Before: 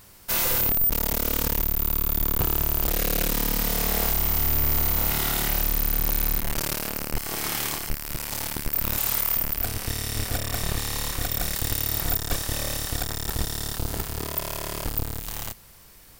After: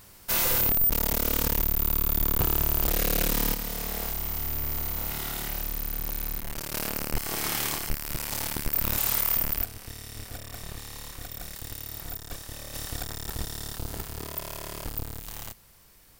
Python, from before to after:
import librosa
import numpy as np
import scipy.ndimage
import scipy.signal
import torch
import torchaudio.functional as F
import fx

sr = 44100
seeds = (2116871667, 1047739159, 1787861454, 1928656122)

y = fx.gain(x, sr, db=fx.steps((0.0, -1.0), (3.54, -8.0), (6.74, -1.0), (9.64, -12.0), (12.74, -6.0)))